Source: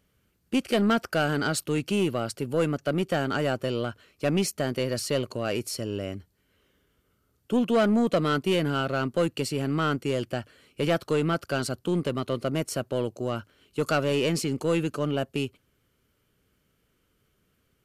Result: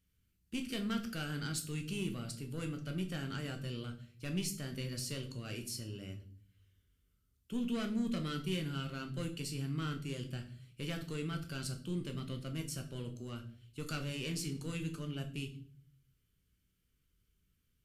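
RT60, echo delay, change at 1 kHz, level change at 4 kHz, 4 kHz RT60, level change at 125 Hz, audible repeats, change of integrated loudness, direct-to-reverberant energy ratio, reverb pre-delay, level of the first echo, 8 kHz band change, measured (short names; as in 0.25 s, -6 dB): 0.50 s, none, -18.0 dB, -9.5 dB, 0.45 s, -8.0 dB, none, -12.5 dB, 4.0 dB, 11 ms, none, -8.0 dB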